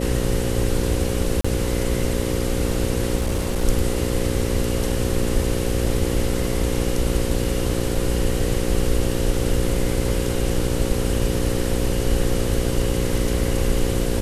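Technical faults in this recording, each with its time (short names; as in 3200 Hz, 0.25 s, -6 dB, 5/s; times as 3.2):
buzz 60 Hz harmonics 9 -25 dBFS
1.41–1.45 gap 35 ms
3.18–3.65 clipped -17.5 dBFS
7.95 gap 2.1 ms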